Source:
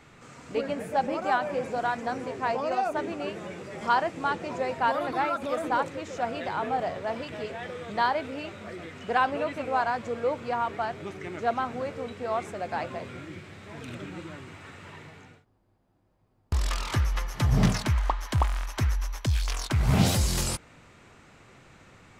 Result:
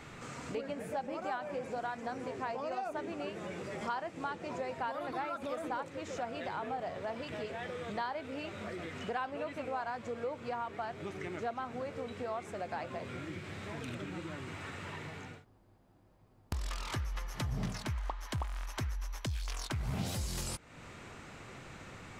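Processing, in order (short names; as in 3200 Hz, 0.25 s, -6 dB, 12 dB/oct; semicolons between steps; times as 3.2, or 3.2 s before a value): compressor 3:1, threshold -44 dBFS, peak gain reduction 20 dB; gain +4 dB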